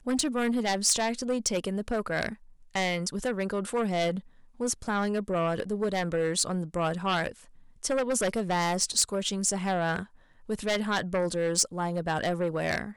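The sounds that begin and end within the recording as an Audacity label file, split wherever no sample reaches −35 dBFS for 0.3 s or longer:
2.750000	4.190000	sound
4.600000	7.310000	sound
7.830000	10.040000	sound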